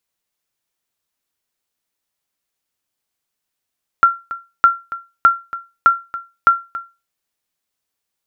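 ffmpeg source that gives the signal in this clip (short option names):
-f lavfi -i "aevalsrc='0.794*(sin(2*PI*1370*mod(t,0.61))*exp(-6.91*mod(t,0.61)/0.27)+0.158*sin(2*PI*1370*max(mod(t,0.61)-0.28,0))*exp(-6.91*max(mod(t,0.61)-0.28,0)/0.27))':d=3.05:s=44100"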